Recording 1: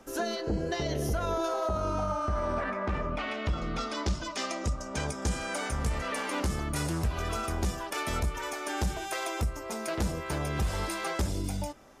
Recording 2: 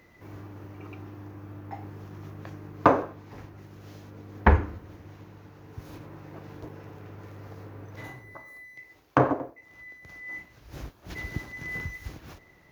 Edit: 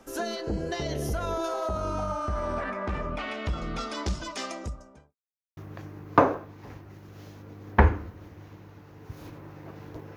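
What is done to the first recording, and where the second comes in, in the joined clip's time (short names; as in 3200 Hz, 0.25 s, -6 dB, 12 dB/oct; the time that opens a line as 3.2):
recording 1
4.3–5.16 studio fade out
5.16–5.57 mute
5.57 switch to recording 2 from 2.25 s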